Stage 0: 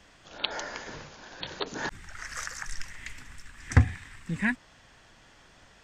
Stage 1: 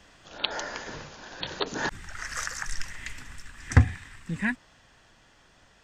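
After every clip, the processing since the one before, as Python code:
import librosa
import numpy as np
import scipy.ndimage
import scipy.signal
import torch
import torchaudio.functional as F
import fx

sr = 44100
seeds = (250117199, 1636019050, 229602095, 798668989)

y = fx.notch(x, sr, hz=2200.0, q=22.0)
y = fx.rider(y, sr, range_db=4, speed_s=2.0)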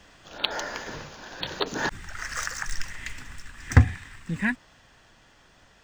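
y = scipy.signal.medfilt(x, 3)
y = y * librosa.db_to_amplitude(2.0)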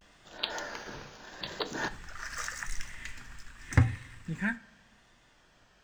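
y = fx.vibrato(x, sr, rate_hz=0.83, depth_cents=94.0)
y = fx.rev_double_slope(y, sr, seeds[0], early_s=0.32, late_s=1.5, knee_db=-18, drr_db=9.5)
y = y * librosa.db_to_amplitude(-6.5)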